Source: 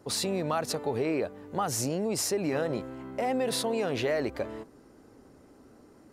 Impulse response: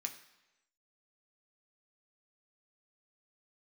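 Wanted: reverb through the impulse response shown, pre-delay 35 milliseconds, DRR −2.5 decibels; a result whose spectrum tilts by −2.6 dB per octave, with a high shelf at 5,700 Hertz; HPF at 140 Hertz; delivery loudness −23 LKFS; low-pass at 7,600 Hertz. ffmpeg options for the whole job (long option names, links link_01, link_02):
-filter_complex "[0:a]highpass=140,lowpass=7600,highshelf=frequency=5700:gain=8.5,asplit=2[link_01][link_02];[1:a]atrim=start_sample=2205,adelay=35[link_03];[link_02][link_03]afir=irnorm=-1:irlink=0,volume=4dB[link_04];[link_01][link_04]amix=inputs=2:normalize=0,volume=3dB"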